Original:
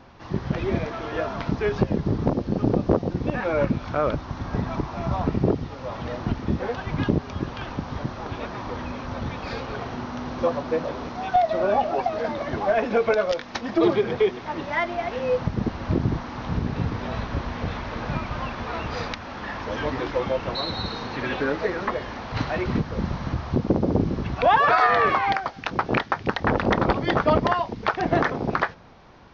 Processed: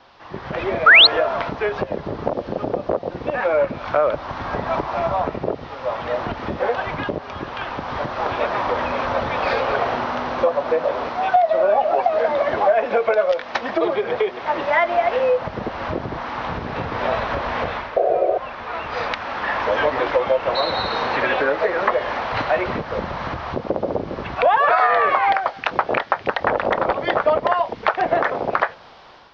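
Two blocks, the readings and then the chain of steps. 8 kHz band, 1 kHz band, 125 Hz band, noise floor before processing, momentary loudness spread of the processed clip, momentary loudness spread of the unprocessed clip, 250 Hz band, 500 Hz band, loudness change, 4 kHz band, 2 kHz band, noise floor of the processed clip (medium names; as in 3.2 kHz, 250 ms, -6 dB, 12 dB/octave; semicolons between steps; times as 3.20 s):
no reading, +5.5 dB, -7.5 dB, -38 dBFS, 10 LU, 10 LU, -4.5 dB, +5.5 dB, +5.0 dB, +12.5 dB, +8.0 dB, -37 dBFS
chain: band noise 2.8–5.5 kHz -58 dBFS; painted sound noise, 17.96–18.38 s, 330–750 Hz -14 dBFS; level rider gain up to 13 dB; dynamic bell 580 Hz, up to +6 dB, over -30 dBFS, Q 2.4; compression 3:1, threshold -16 dBFS, peak gain reduction 10 dB; three-band isolator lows -14 dB, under 450 Hz, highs -14 dB, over 3.6 kHz; painted sound rise, 0.86–1.07 s, 1.2–4.5 kHz -10 dBFS; trim +2 dB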